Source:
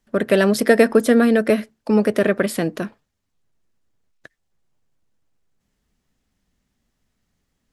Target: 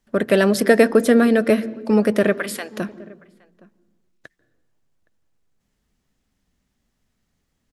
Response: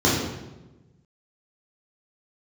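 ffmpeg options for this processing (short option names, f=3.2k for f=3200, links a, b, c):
-filter_complex "[0:a]asplit=3[a][b][c];[a]afade=t=out:st=2.32:d=0.02[d];[b]highpass=900,afade=t=in:st=2.32:d=0.02,afade=t=out:st=2.76:d=0.02[e];[c]afade=t=in:st=2.76:d=0.02[f];[d][e][f]amix=inputs=3:normalize=0,asplit=2[g][h];[h]adelay=816.3,volume=-24dB,highshelf=f=4k:g=-18.4[i];[g][i]amix=inputs=2:normalize=0,asplit=2[j][k];[1:a]atrim=start_sample=2205,lowpass=7.2k,adelay=139[l];[k][l]afir=irnorm=-1:irlink=0,volume=-40.5dB[m];[j][m]amix=inputs=2:normalize=0"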